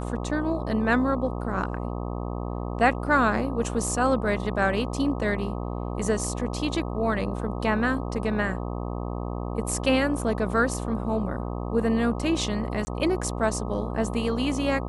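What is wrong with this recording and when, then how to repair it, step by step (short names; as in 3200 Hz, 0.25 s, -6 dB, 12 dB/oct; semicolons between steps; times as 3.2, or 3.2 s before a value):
buzz 60 Hz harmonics 21 -31 dBFS
12.85–12.87 gap 20 ms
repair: de-hum 60 Hz, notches 21; interpolate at 12.85, 20 ms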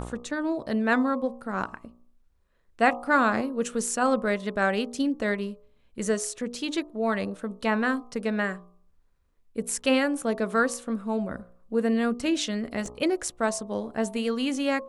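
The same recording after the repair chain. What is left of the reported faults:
none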